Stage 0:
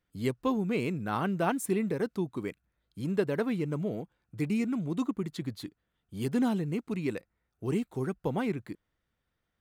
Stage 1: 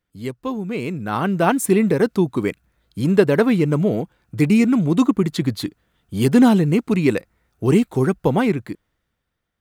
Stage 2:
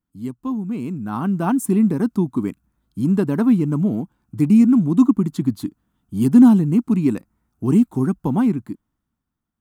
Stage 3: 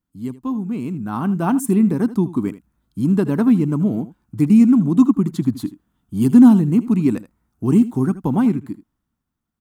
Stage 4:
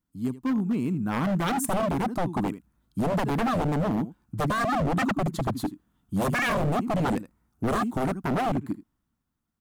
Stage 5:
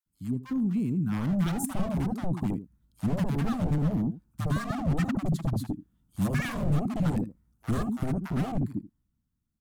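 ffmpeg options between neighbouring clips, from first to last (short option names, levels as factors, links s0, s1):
-af "dynaudnorm=f=370:g=7:m=4.47,volume=1.26"
-af "equalizer=f=250:t=o:w=1:g=10,equalizer=f=500:t=o:w=1:g=-12,equalizer=f=1000:t=o:w=1:g=5,equalizer=f=2000:t=o:w=1:g=-10,equalizer=f=4000:t=o:w=1:g=-7,volume=0.631"
-af "aecho=1:1:79:0.158,volume=1.12"
-af "aeval=exprs='0.119*(abs(mod(val(0)/0.119+3,4)-2)-1)':c=same,volume=0.841"
-filter_complex "[0:a]bass=f=250:g=12,treble=f=4000:g=4,acrossover=split=880[s0][s1];[s0]adelay=60[s2];[s2][s1]amix=inputs=2:normalize=0,volume=0.376"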